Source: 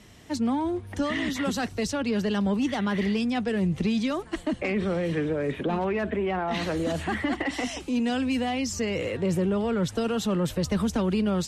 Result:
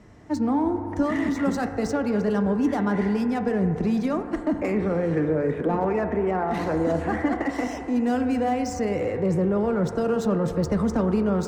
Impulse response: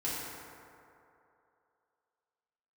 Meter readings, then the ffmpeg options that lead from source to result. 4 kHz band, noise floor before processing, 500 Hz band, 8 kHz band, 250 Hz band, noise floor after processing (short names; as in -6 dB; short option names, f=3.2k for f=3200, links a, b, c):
-9.5 dB, -44 dBFS, +4.0 dB, n/a, +3.0 dB, -33 dBFS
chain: -filter_complex "[0:a]adynamicsmooth=sensitivity=6:basefreq=4.8k,equalizer=f=3.2k:w=1.3:g=-12.5,asplit=2[a][b];[1:a]atrim=start_sample=2205,lowpass=2.2k,lowshelf=f=220:g=-10.5[c];[b][c]afir=irnorm=-1:irlink=0,volume=-8dB[d];[a][d]amix=inputs=2:normalize=0,volume=1.5dB"